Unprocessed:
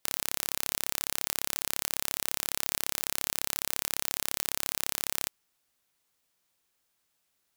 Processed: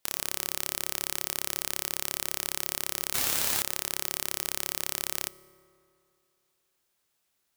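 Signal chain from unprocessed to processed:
0:03.14–0:03.62: power curve on the samples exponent 0.35
on a send: convolution reverb RT60 2.7 s, pre-delay 3 ms, DRR 17.5 dB

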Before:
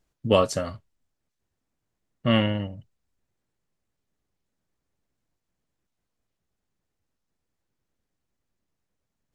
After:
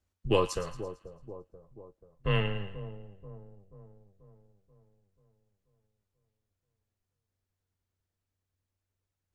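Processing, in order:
frequency shifter −94 Hz
echo with a time of its own for lows and highs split 900 Hz, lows 485 ms, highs 112 ms, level −13 dB
level −6 dB

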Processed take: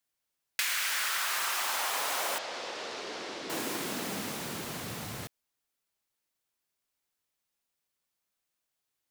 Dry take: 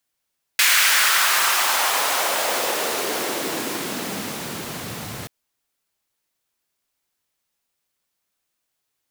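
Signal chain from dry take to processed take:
downward compressor 6 to 1, threshold −21 dBFS, peak gain reduction 8 dB
0:02.38–0:03.50: transistor ladder low-pass 6,400 Hz, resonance 25%
level −7 dB

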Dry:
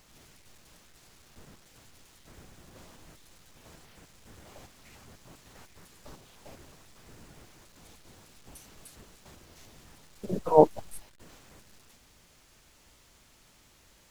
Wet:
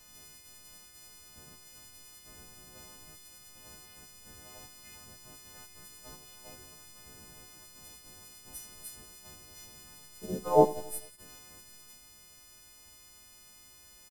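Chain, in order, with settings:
every partial snapped to a pitch grid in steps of 3 semitones
low-shelf EQ 390 Hz +5 dB
repeating echo 89 ms, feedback 56%, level −18 dB
level −5 dB

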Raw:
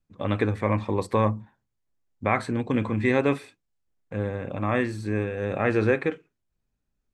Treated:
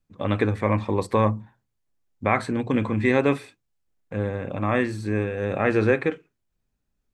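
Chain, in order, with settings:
mains-hum notches 60/120 Hz
level +2 dB

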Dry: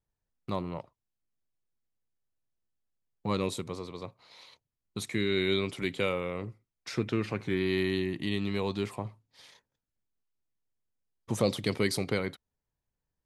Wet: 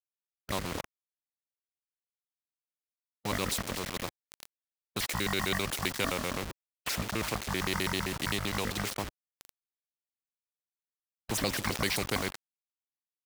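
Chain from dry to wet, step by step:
pitch shifter gated in a rhythm −12 semitones, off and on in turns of 65 ms
centre clipping without the shift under −43.5 dBFS
every bin compressed towards the loudest bin 2 to 1

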